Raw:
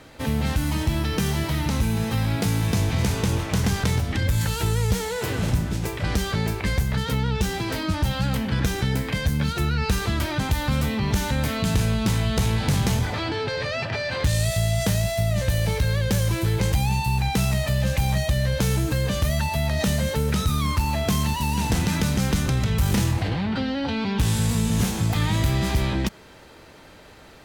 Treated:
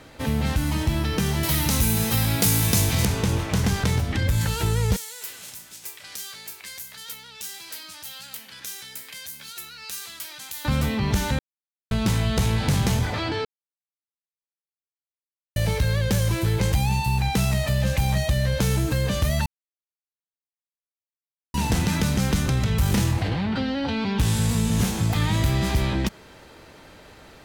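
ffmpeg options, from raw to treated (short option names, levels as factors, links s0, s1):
-filter_complex "[0:a]asettb=1/sr,asplit=3[s0][s1][s2];[s0]atrim=end=1.434[s3];[s1]atrim=start=1.43:end=3.05,asetpts=PTS-STARTPTS,afade=t=in:d=0.004:c=qsin,afade=t=out:st=1.616:d=0.004:c=qsin,aemphasis=mode=production:type=75kf[s4];[s2]atrim=start=3.046[s5];[s3][s4]acrossfade=d=0.004:c1=hsin:c2=qsin[s6];[s6][s5]acrossfade=d=0.004:c1=qsin:c2=hsin,asettb=1/sr,asplit=3[s7][s8][s9];[s7]atrim=end=4.964[s10];[s8]atrim=start=4.96:end=10.65,asetpts=PTS-STARTPTS,afade=t=in:d=0.004:c=qsin,afade=t=out:st=5.686:d=0.004:c=qsin,aderivative[s11];[s9]atrim=start=10.646[s12];[s10][s11]acrossfade=d=0.004:c1=hsin:c2=qsin[s13];[s13][s12]acrossfade=d=0.004:c1=qsin:c2=hsin,asplit=7[s14][s15][s16][s17][s18][s19][s20];[s14]atrim=end=11.39,asetpts=PTS-STARTPTS,afade=t=out:st=11.386:d=0.004:c=hsin[s21];[s15]atrim=start=11.39:end=11.91,asetpts=PTS-STARTPTS,volume=0[s22];[s16]atrim=start=11.91:end=13.45,asetpts=PTS-STARTPTS,afade=t=in:d=0.004:c=hsin,afade=t=out:st=1.536:d=0.004:c=hsin[s23];[s17]atrim=start=13.45:end=15.56,asetpts=PTS-STARTPTS,volume=0[s24];[s18]atrim=start=15.56:end=19.46,asetpts=PTS-STARTPTS,afade=t=in:d=0.004:c=hsin,afade=t=out:st=3.896:d=0.004:c=hsin[s25];[s19]atrim=start=19.46:end=21.54,asetpts=PTS-STARTPTS,volume=0[s26];[s20]atrim=start=21.54,asetpts=PTS-STARTPTS,afade=t=in:d=0.004:c=hsin[s27];[s21][s22][s23][s24][s25][s26][s27]concat=n=7:v=0:a=1"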